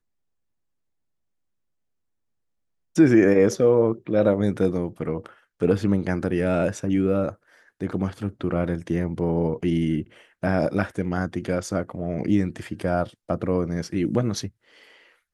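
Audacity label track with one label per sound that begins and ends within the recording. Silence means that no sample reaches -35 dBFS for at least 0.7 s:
2.960000	14.480000	sound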